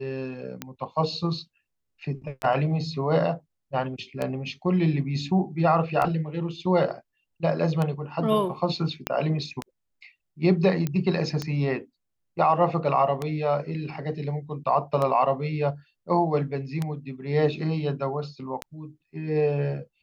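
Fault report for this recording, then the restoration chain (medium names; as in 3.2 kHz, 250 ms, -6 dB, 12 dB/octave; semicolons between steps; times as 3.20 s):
tick 33 1/3 rpm -14 dBFS
9.07 s: pop -9 dBFS
10.87 s: pop -14 dBFS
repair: de-click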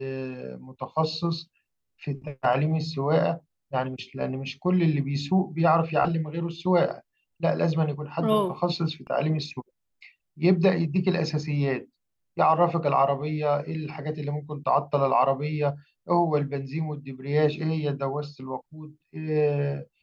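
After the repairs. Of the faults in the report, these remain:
9.07 s: pop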